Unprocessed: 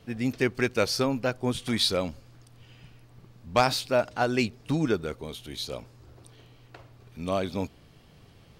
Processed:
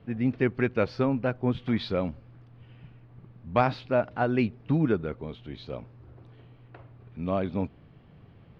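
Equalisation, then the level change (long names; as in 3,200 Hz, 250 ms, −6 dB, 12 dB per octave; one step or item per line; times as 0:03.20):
high-frequency loss of the air 260 metres
bass and treble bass +7 dB, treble −12 dB
low-shelf EQ 82 Hz −11 dB
0.0 dB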